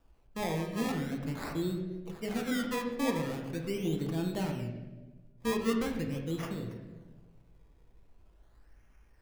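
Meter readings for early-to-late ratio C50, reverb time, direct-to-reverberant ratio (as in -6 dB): 5.0 dB, 1.3 s, 1.5 dB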